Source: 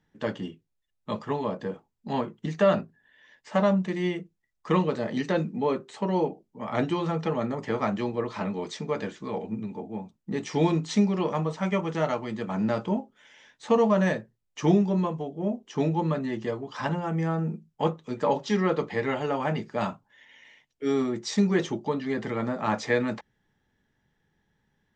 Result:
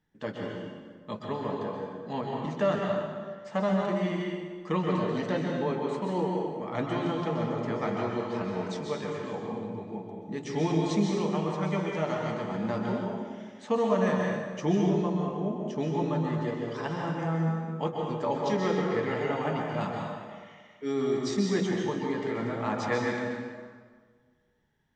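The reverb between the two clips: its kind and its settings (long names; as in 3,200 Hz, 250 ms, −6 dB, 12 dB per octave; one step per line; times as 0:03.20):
dense smooth reverb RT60 1.6 s, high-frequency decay 0.75×, pre-delay 115 ms, DRR −1 dB
level −5.5 dB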